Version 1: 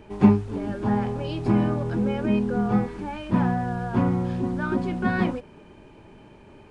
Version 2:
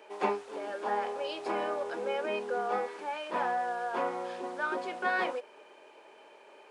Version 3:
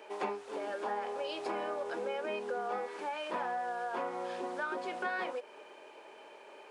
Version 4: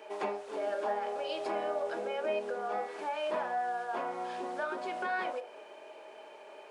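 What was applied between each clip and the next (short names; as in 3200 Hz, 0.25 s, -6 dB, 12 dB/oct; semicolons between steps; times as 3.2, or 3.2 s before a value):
Chebyshev high-pass 490 Hz, order 3
compressor 3:1, threshold -37 dBFS, peak gain reduction 10 dB; gain +2 dB
on a send at -12 dB: resonant high-pass 630 Hz, resonance Q 6.7 + reverb RT60 0.55 s, pre-delay 4 ms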